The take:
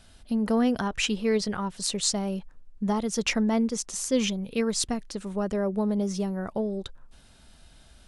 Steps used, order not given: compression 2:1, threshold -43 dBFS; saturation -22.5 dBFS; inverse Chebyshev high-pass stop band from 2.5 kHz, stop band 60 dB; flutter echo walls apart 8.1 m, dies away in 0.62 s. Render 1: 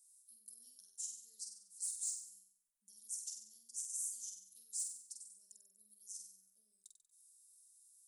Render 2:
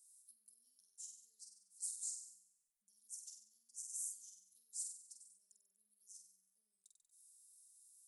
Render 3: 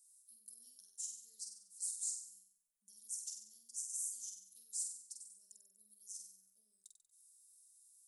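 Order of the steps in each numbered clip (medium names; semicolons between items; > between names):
inverse Chebyshev high-pass > saturation > compression > flutter echo; flutter echo > compression > inverse Chebyshev high-pass > saturation; inverse Chebyshev high-pass > compression > flutter echo > saturation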